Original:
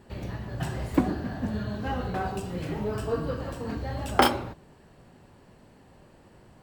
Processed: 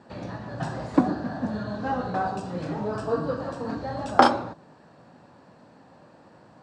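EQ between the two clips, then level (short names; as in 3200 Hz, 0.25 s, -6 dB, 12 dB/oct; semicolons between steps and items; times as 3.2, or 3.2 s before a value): dynamic EQ 2400 Hz, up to -4 dB, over -49 dBFS, Q 1.3; air absorption 100 m; speaker cabinet 190–9300 Hz, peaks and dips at 210 Hz -3 dB, 390 Hz -9 dB, 2100 Hz -7 dB, 3000 Hz -8 dB; +6.5 dB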